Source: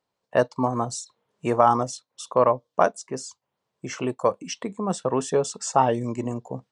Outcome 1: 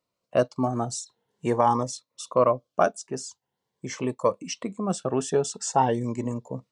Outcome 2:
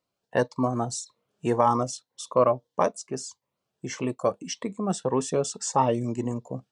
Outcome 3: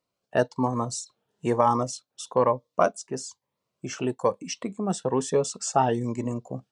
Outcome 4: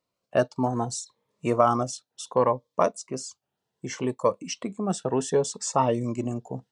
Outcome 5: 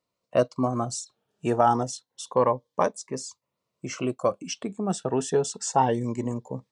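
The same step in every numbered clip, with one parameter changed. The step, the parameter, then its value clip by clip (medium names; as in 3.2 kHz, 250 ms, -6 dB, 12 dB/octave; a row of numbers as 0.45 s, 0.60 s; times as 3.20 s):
Shepard-style phaser, rate: 0.45 Hz, 1.7 Hz, 1.1 Hz, 0.68 Hz, 0.28 Hz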